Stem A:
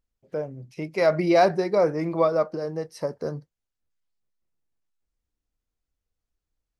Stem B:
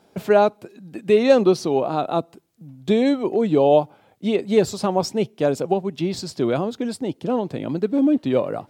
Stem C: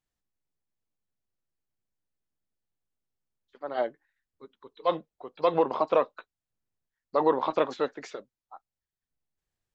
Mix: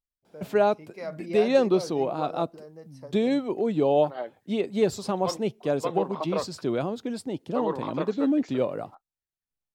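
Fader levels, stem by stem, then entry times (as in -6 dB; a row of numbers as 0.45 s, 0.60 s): -15.5 dB, -6.0 dB, -6.0 dB; 0.00 s, 0.25 s, 0.40 s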